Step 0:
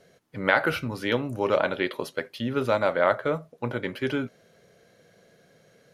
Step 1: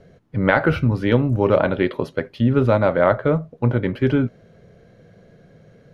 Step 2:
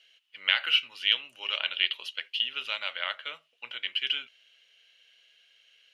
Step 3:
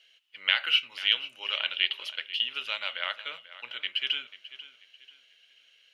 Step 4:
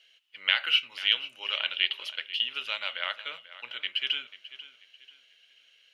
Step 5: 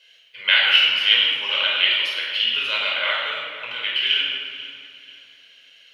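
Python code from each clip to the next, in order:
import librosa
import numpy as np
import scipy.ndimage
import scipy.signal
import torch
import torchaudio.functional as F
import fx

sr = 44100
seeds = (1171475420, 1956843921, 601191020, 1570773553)

y1 = fx.riaa(x, sr, side='playback')
y1 = y1 * 10.0 ** (4.0 / 20.0)
y2 = fx.highpass_res(y1, sr, hz=2900.0, q=11.0)
y2 = y2 * 10.0 ** (-2.0 / 20.0)
y3 = fx.echo_feedback(y2, sr, ms=490, feedback_pct=33, wet_db=-16.0)
y4 = y3
y5 = fx.room_shoebox(y4, sr, seeds[0], volume_m3=1900.0, walls='mixed', distance_m=5.1)
y5 = y5 * 10.0 ** (3.0 / 20.0)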